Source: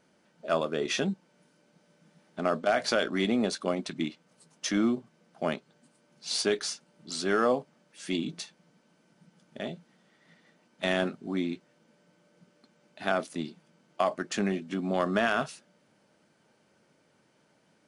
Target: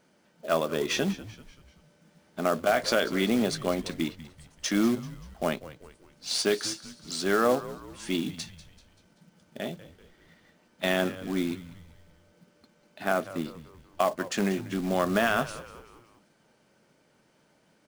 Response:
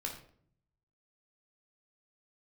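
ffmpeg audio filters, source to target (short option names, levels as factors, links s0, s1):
-filter_complex "[0:a]asettb=1/sr,asplit=3[s0][s1][s2];[s0]atrim=end=13.034[s3];[s1]atrim=start=13.03:end=13.45,asetpts=PTS-STARTPTS,afade=t=in:d=0.004:c=qsin,afade=t=out:st=0.416:d=0.004:c=qsin,acrossover=split=2900[s4][s5];[s5]acompressor=threshold=0.00126:ratio=4:attack=1:release=60[s6];[s4][s6]amix=inputs=2:normalize=0[s7];[s2]atrim=start=13.446[s8];[s3][s7]acrossfade=d=0.004:c1=hsin:c2=qsin[s9];[s9][s8]acrossfade=d=0.004:c1=qsin:c2=hsin,acrusher=bits=4:mode=log:mix=0:aa=0.000001,asplit=2[s10][s11];[s11]asplit=4[s12][s13][s14][s15];[s12]adelay=193,afreqshift=-87,volume=0.158[s16];[s13]adelay=386,afreqshift=-174,volume=0.0759[s17];[s14]adelay=579,afreqshift=-261,volume=0.0363[s18];[s15]adelay=772,afreqshift=-348,volume=0.0176[s19];[s16][s17][s18][s19]amix=inputs=4:normalize=0[s20];[s10][s20]amix=inputs=2:normalize=0,volume=1.19"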